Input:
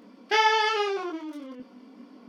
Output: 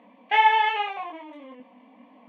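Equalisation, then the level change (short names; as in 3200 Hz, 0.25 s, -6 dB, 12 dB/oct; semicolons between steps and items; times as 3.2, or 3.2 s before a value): BPF 280–2600 Hz; fixed phaser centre 1400 Hz, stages 6; +5.5 dB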